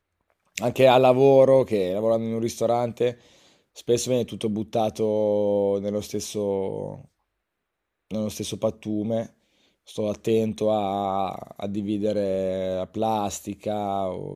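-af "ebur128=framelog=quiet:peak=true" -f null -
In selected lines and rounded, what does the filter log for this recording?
Integrated loudness:
  I:         -23.9 LUFS
  Threshold: -34.4 LUFS
Loudness range:
  LRA:        10.0 LU
  Threshold: -45.6 LUFS
  LRA low:   -30.6 LUFS
  LRA high:  -20.6 LUFS
True peak:
  Peak:       -4.2 dBFS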